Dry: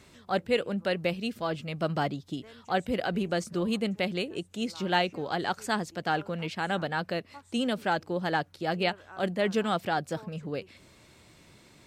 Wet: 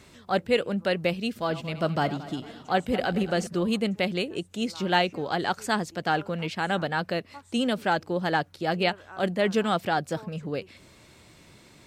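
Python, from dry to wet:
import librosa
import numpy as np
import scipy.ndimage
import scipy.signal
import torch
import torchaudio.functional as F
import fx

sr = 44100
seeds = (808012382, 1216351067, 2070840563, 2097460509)

y = fx.reverse_delay_fb(x, sr, ms=112, feedback_pct=67, wet_db=-14, at=(1.29, 3.47))
y = y * librosa.db_to_amplitude(3.0)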